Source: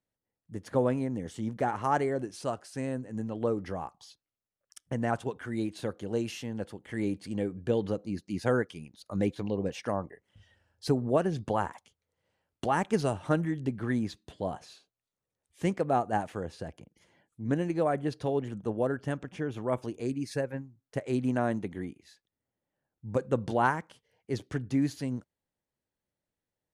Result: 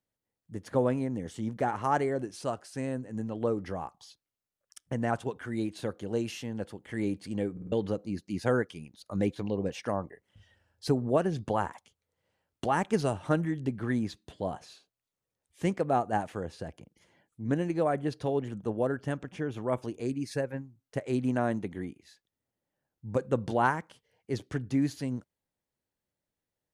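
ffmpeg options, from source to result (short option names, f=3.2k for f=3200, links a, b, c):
-filter_complex "[0:a]asplit=5[a][b][c][d][e];[a]atrim=end=7.572[f];[b]atrim=start=7.518:end=7.572[g];[c]atrim=start=7.518:end=7.572[h];[d]atrim=start=7.518:end=7.572[i];[e]atrim=start=7.718[j];[f][g]acrossfade=d=0.004:c1=hsin:c2=hsin[k];[k][h]acrossfade=d=0.004:c1=hsin:c2=hsin[l];[l][i]acrossfade=d=0.004:c1=hsin:c2=hsin[m];[m][j]acrossfade=d=0.004:c1=hsin:c2=hsin"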